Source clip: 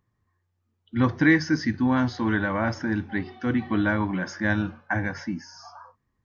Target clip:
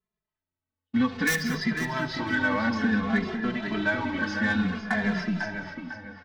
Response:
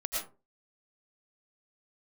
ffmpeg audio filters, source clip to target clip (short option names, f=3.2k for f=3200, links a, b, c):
-filter_complex "[0:a]aeval=exprs='val(0)+0.5*0.02*sgn(val(0))':c=same,agate=range=-52dB:threshold=-34dB:ratio=16:detection=peak,lowpass=f=4.4k:w=0.5412,lowpass=f=4.4k:w=1.3066,aecho=1:1:4.6:0.72,acrossover=split=2500[a][b];[a]acompressor=threshold=-27dB:ratio=6[c];[b]aeval=exprs='(mod(18.8*val(0)+1,2)-1)/18.8':c=same[d];[c][d]amix=inputs=2:normalize=0,aeval=exprs='0.188*(cos(1*acos(clip(val(0)/0.188,-1,1)))-cos(1*PI/2))+0.0119*(cos(5*acos(clip(val(0)/0.188,-1,1)))-cos(5*PI/2))+0.0119*(cos(7*acos(clip(val(0)/0.188,-1,1)))-cos(7*PI/2))':c=same,asplit=2[e][f];[f]adelay=499,lowpass=f=3.2k:p=1,volume=-6dB,asplit=2[g][h];[h]adelay=499,lowpass=f=3.2k:p=1,volume=0.39,asplit=2[i][j];[j]adelay=499,lowpass=f=3.2k:p=1,volume=0.39,asplit=2[k][l];[l]adelay=499,lowpass=f=3.2k:p=1,volume=0.39,asplit=2[m][n];[n]adelay=499,lowpass=f=3.2k:p=1,volume=0.39[o];[e][g][i][k][m][o]amix=inputs=6:normalize=0,asplit=2[p][q];[1:a]atrim=start_sample=2205,adelay=77[r];[q][r]afir=irnorm=-1:irlink=0,volume=-17dB[s];[p][s]amix=inputs=2:normalize=0,asplit=2[t][u];[u]adelay=2.5,afreqshift=-0.58[v];[t][v]amix=inputs=2:normalize=1,volume=5.5dB"